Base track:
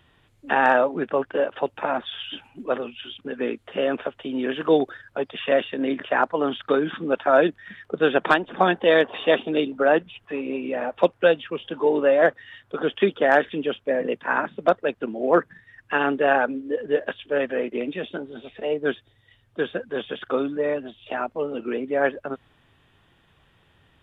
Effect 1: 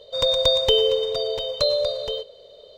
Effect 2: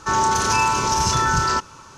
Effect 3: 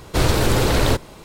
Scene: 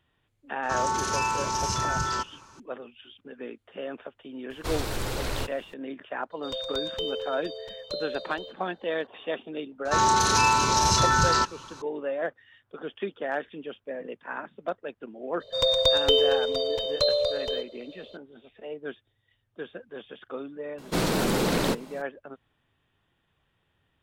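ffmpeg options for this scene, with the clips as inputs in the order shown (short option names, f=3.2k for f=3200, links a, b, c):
-filter_complex "[2:a]asplit=2[a][b];[3:a]asplit=2[c][d];[1:a]asplit=2[e][f];[0:a]volume=-12.5dB[g];[c]equalizer=f=170:w=0.33:g=-5[h];[b]equalizer=f=4k:w=5.9:g=9[i];[d]lowshelf=f=130:t=q:w=3:g=-10[j];[a]atrim=end=1.97,asetpts=PTS-STARTPTS,volume=-8.5dB,afade=t=in:d=0.004:c=hsin,afade=t=out:st=1.966:d=0.004:c=hsin,adelay=630[k];[h]atrim=end=1.24,asetpts=PTS-STARTPTS,volume=-11dB,afade=t=in:d=0.004:c=hsin,afade=t=out:st=1.236:d=0.004:c=hsin,adelay=4500[l];[e]atrim=end=2.77,asetpts=PTS-STARTPTS,volume=-13.5dB,afade=t=in:d=0.004:c=hsin,afade=t=out:st=2.766:d=0.004:c=hsin,adelay=6300[m];[i]atrim=end=1.97,asetpts=PTS-STARTPTS,volume=-2.5dB,afade=t=in:d=0.004:c=hsin,afade=t=out:st=1.966:d=0.004:c=hsin,adelay=9850[n];[f]atrim=end=2.77,asetpts=PTS-STARTPTS,volume=-2.5dB,afade=t=in:d=0.004:c=hsin,afade=t=out:st=2.766:d=0.004:c=hsin,adelay=679140S[o];[j]atrim=end=1.24,asetpts=PTS-STARTPTS,volume=-6.5dB,afade=t=in:d=0.004:c=hsin,afade=t=out:st=1.236:d=0.004:c=hsin,adelay=20780[p];[g][k][l][m][n][o][p]amix=inputs=7:normalize=0"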